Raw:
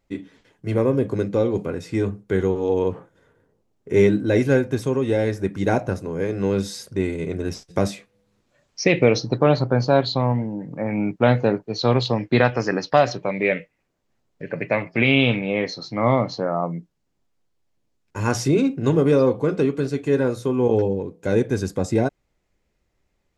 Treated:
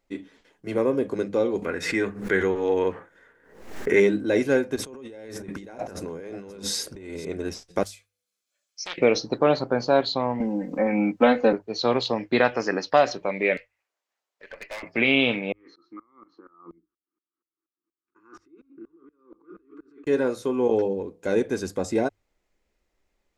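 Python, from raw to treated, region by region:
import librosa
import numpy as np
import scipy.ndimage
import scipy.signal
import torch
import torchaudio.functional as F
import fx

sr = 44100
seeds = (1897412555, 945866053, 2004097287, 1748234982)

y = fx.chain(x, sr, fx.peak_eq(hz=1800.0, db=12.5, octaves=0.89),
    fx.pre_swell(db_per_s=81.0), at=(1.62, 4.0))
y = fx.chain(y, sr, fx.over_compress(threshold_db=-33.0, ratio=-1.0),
    fx.echo_single(ms=528, db=-16.5), at=(4.76, 7.25))
y = fx.chain(y, sr, fx.pre_emphasis(coefficient=0.97),
    fx.notch_comb(f0_hz=930.0),
    fx.doppler_dist(depth_ms=0.63), at=(7.83, 8.98))
y = fx.chain(y, sr, fx.comb(ms=3.9, depth=0.93),
    fx.band_squash(depth_pct=40), at=(10.4, 11.53))
y = fx.chain(y, sr, fx.highpass(hz=770.0, slope=12),
    fx.tube_stage(drive_db=30.0, bias=0.55), at=(13.57, 14.83))
y = fx.chain(y, sr, fx.over_compress(threshold_db=-29.0, ratio=-1.0),
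    fx.double_bandpass(hz=640.0, octaves=1.9),
    fx.tremolo_decay(direction='swelling', hz=4.2, depth_db=24), at=(15.52, 20.07))
y = fx.peak_eq(y, sr, hz=120.0, db=-14.5, octaves=1.0)
y = fx.hum_notches(y, sr, base_hz=50, count=2)
y = F.gain(torch.from_numpy(y), -1.5).numpy()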